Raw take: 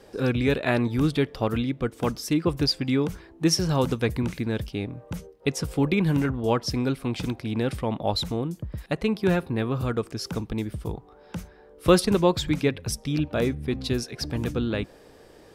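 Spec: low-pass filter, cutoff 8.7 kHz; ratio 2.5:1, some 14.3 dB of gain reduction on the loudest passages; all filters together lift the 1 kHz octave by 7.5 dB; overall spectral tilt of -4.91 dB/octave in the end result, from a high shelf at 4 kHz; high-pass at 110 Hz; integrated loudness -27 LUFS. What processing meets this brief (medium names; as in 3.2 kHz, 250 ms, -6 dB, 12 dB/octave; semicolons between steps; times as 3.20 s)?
high-pass 110 Hz; low-pass 8.7 kHz; peaking EQ 1 kHz +9 dB; treble shelf 4 kHz +6 dB; compression 2.5:1, threshold -33 dBFS; trim +7 dB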